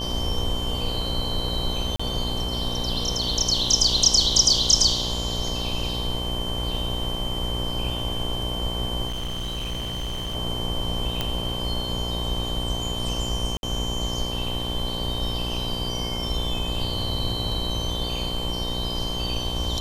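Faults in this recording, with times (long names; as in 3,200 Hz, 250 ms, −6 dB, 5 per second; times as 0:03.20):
mains buzz 60 Hz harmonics 19 −31 dBFS
whistle 3,100 Hz −30 dBFS
0:01.96–0:02.00: drop-out 35 ms
0:09.07–0:10.36: clipping −26 dBFS
0:11.21: click −10 dBFS
0:13.57–0:13.63: drop-out 61 ms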